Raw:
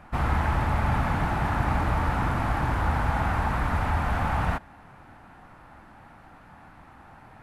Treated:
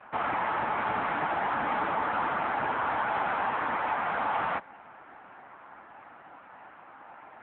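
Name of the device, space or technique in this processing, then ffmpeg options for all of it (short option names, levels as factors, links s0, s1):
telephone: -af "highpass=350,lowpass=3300,asoftclip=type=tanh:threshold=0.0668,volume=1.78" -ar 8000 -c:a libopencore_amrnb -b:a 6700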